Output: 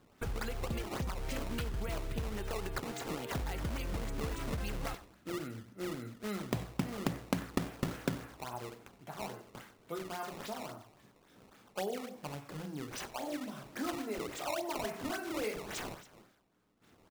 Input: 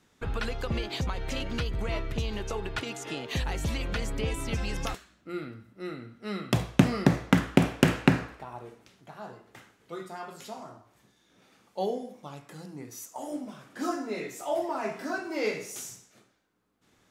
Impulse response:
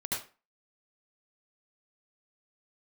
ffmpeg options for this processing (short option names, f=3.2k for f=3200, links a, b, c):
-af "acompressor=threshold=-39dB:ratio=2.5,acrusher=samples=16:mix=1:aa=0.000001:lfo=1:lforange=25.6:lforate=3.6,aecho=1:1:93:0.112,volume=1.5dB"